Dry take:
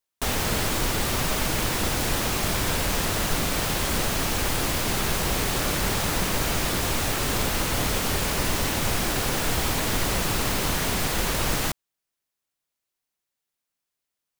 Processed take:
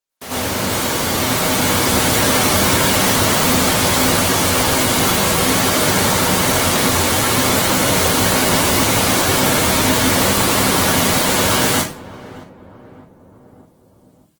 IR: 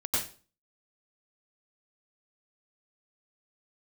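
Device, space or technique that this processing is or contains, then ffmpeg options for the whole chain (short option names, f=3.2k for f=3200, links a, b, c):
far-field microphone of a smart speaker: -filter_complex "[0:a]bandreject=f=60:t=h:w=6,bandreject=f=120:t=h:w=6,bandreject=f=180:t=h:w=6,bandreject=f=240:t=h:w=6,bandreject=f=300:t=h:w=6,asplit=2[a][b];[b]adelay=607,lowpass=f=1k:p=1,volume=-16.5dB,asplit=2[c][d];[d]adelay=607,lowpass=f=1k:p=1,volume=0.47,asplit=2[e][f];[f]adelay=607,lowpass=f=1k:p=1,volume=0.47,asplit=2[g][h];[h]adelay=607,lowpass=f=1k:p=1,volume=0.47[i];[a][c][e][g][i]amix=inputs=5:normalize=0[j];[1:a]atrim=start_sample=2205[k];[j][k]afir=irnorm=-1:irlink=0,highpass=130,dynaudnorm=f=150:g=21:m=12dB,volume=-1dB" -ar 48000 -c:a libopus -b:a 16k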